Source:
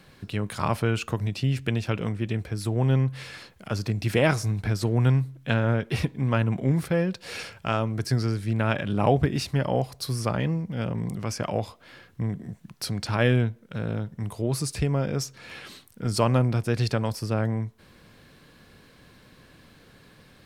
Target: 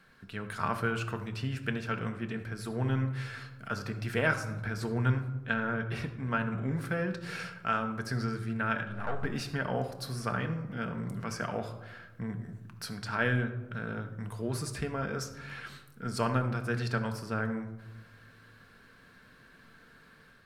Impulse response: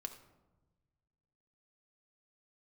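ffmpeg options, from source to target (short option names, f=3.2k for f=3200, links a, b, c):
-filter_complex "[0:a]asettb=1/sr,asplit=3[a][b][c];[a]atrim=end=8.834[d];[b]atrim=start=8.83:end=9.25,asetpts=PTS-STARTPTS,afade=t=in:d=0.004:c=qsin,afade=t=out:st=0.416:d=0.004:c=qsin,aeval=exprs='(tanh(7.94*val(0)+0.8)-tanh(0.8))/7.94':c=same[e];[c]atrim=start=9.246[f];[d][e]acrossfade=d=0.004:c1=hsin:c2=qsin[g];[g][f]acrossfade=d=0.004:c1=qsin:c2=hsin,equalizer=f=1.5k:t=o:w=0.67:g=12.5,dynaudnorm=f=260:g=3:m=3.5dB,asettb=1/sr,asplit=3[h][i][j];[h]atrim=end=5.014[k];[i]atrim=start=5.01:end=6.81,asetpts=PTS-STARTPTS,afade=t=in:d=0.004:c=qsin,afade=t=out:st=1.796:d=0.004:c=qsin,highshelf=f=11k:g=-6[l];[j]atrim=start=6.806[m];[k][l]acrossfade=d=0.004:c1=hsin:c2=qsin[n];[n][m]acrossfade=d=0.004:c1=qsin:c2=hsin[o];[1:a]atrim=start_sample=2205[p];[o][p]afir=irnorm=-1:irlink=0,volume=-8dB"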